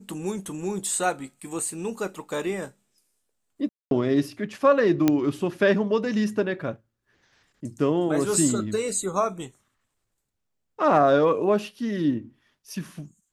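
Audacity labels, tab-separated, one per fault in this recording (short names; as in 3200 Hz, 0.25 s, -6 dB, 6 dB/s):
3.690000	3.910000	gap 0.222 s
5.080000	5.080000	pop -7 dBFS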